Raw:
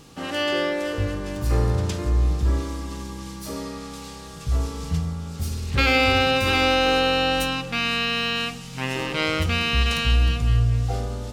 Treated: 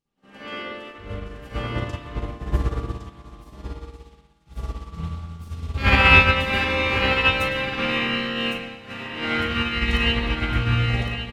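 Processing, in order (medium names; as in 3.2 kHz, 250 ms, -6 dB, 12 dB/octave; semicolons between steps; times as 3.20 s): harmony voices -5 st -7 dB; doubling 39 ms -10 dB; on a send: delay 1110 ms -4.5 dB; on the sum: spring tank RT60 1.5 s, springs 55/60 ms, chirp 75 ms, DRR -10 dB; upward expansion 2.5:1, over -30 dBFS; trim -4 dB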